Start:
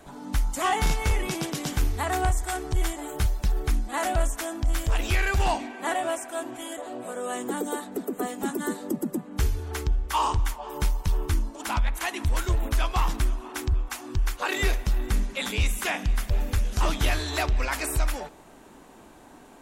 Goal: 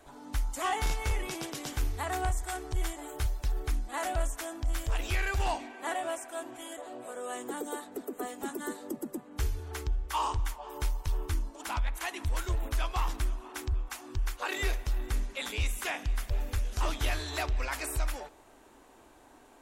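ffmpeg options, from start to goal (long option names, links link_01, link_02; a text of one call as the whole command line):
ffmpeg -i in.wav -af "equalizer=frequency=180:width_type=o:width=0.62:gain=-12.5,volume=-6dB" out.wav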